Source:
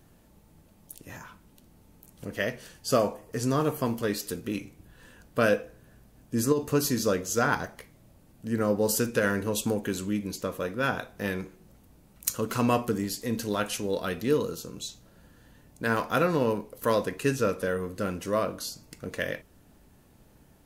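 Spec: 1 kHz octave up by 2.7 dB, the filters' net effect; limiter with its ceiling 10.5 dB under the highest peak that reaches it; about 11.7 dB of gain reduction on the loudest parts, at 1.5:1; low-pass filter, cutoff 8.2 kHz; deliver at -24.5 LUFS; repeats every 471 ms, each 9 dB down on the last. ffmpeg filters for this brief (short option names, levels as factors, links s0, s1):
-af "lowpass=8200,equalizer=f=1000:t=o:g=3.5,acompressor=threshold=0.00251:ratio=1.5,alimiter=level_in=2.24:limit=0.0631:level=0:latency=1,volume=0.447,aecho=1:1:471|942|1413|1884:0.355|0.124|0.0435|0.0152,volume=7.94"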